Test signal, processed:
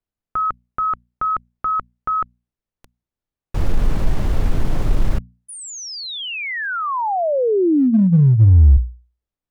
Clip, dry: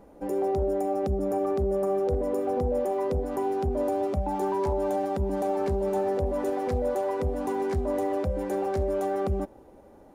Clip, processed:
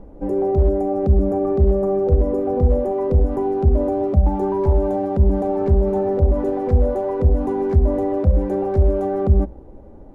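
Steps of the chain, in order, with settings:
spectral tilt −4 dB per octave
mains-hum notches 60/120/180/240 Hz
in parallel at −7 dB: hard clipping −13 dBFS
on the sum: level −1.5 dB

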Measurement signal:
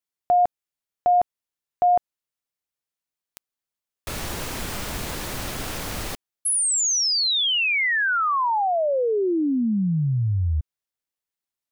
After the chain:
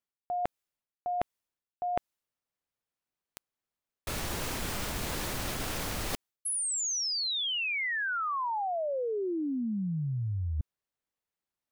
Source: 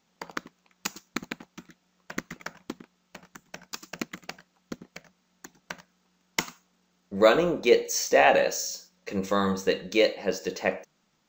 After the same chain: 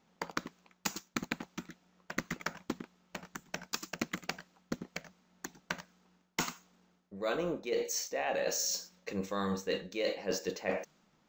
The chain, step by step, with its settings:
reversed playback
downward compressor 20 to 1, threshold −33 dBFS
reversed playback
one half of a high-frequency compander decoder only
level +3 dB

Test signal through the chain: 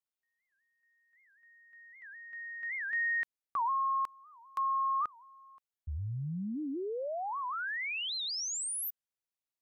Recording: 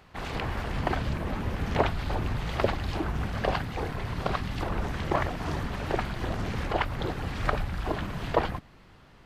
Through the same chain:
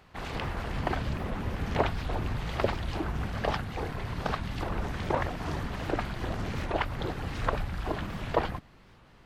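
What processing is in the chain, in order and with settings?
wow of a warped record 78 rpm, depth 250 cents
level −2 dB

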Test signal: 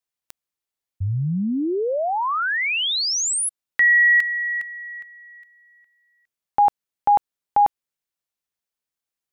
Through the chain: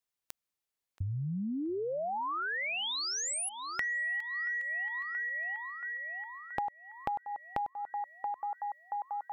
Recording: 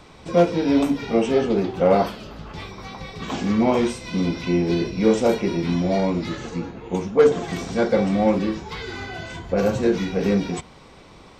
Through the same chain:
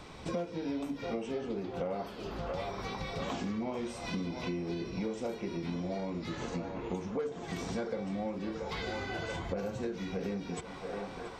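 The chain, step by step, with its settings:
feedback echo with a band-pass in the loop 678 ms, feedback 76%, band-pass 1,000 Hz, level −12 dB
downward compressor 10 to 1, threshold −31 dBFS
level −2 dB

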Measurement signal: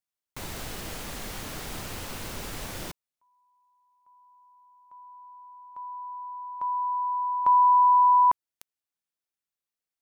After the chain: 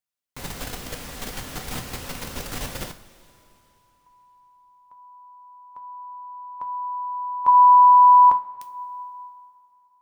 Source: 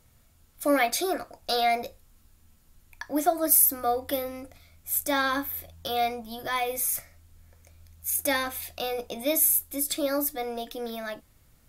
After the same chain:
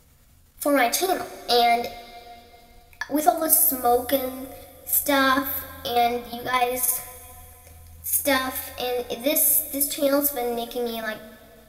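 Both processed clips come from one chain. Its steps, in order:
output level in coarse steps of 9 dB
coupled-rooms reverb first 0.31 s, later 3.2 s, from −18 dB, DRR 6 dB
level +7 dB

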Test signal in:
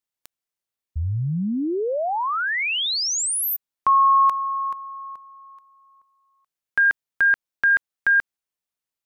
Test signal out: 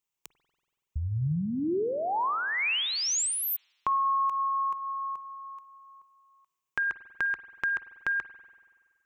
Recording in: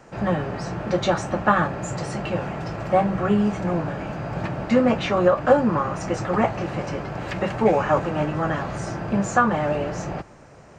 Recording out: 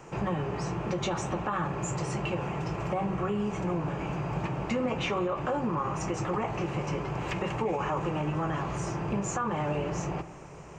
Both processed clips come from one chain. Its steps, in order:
EQ curve with evenly spaced ripples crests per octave 0.72, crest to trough 7 dB
brickwall limiter −14.5 dBFS
downward compressor 2 to 1, threshold −32 dBFS
spring reverb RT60 1.7 s, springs 47 ms, chirp 35 ms, DRR 13.5 dB

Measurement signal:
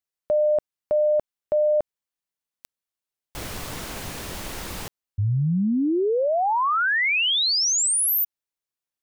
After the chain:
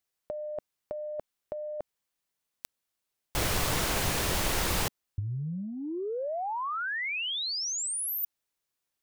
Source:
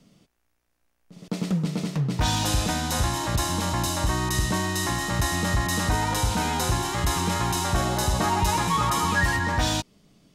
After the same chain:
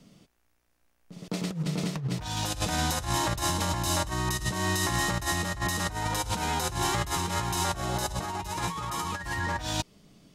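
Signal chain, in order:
compressor whose output falls as the input rises −27 dBFS, ratio −0.5
dynamic equaliser 240 Hz, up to −5 dB, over −44 dBFS, Q 2.5
level −1.5 dB

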